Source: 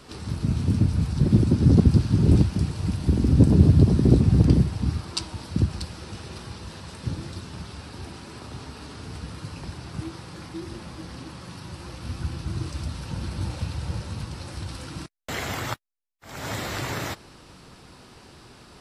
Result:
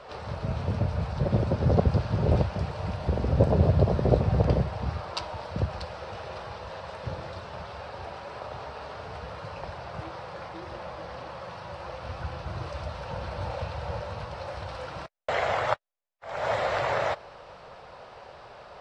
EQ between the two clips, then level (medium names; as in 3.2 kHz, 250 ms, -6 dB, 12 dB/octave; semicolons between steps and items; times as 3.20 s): tape spacing loss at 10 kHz 28 dB; resonant low shelf 410 Hz -11.5 dB, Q 3; +6.5 dB